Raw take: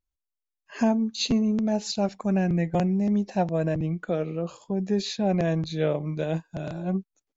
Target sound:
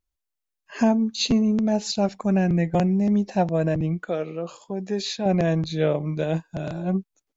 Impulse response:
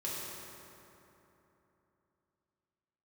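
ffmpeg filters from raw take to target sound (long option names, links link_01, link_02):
-filter_complex "[0:a]asettb=1/sr,asplit=3[link_01][link_02][link_03];[link_01]atrim=end=3.994[link_04];[link_02]atrim=start=3.99:end=5.26,asetpts=PTS-STARTPTS,afade=type=in:duration=0.004:curve=qsin,afade=type=out:start_time=1.266:duration=0.004:curve=qsin,lowshelf=frequency=240:gain=-11.5[link_05];[link_03]atrim=start=5.256[link_06];[link_04][link_05]acrossfade=duration=0.004:curve1=hsin:curve2=qsin[link_07];[link_07][link_06]acrossfade=duration=0.004:curve1=qsin:curve2=hsin,volume=3dB"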